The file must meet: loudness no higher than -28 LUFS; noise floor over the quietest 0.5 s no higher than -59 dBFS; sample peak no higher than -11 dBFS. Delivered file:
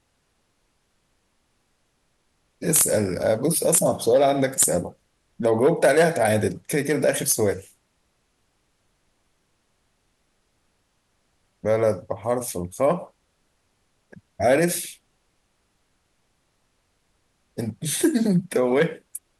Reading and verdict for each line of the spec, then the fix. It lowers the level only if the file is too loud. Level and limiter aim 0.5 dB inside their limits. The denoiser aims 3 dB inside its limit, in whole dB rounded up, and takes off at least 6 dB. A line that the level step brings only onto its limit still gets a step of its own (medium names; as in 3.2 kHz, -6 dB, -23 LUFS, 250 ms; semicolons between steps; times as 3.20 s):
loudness -21.5 LUFS: fail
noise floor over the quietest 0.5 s -69 dBFS: pass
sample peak -5.5 dBFS: fail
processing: trim -7 dB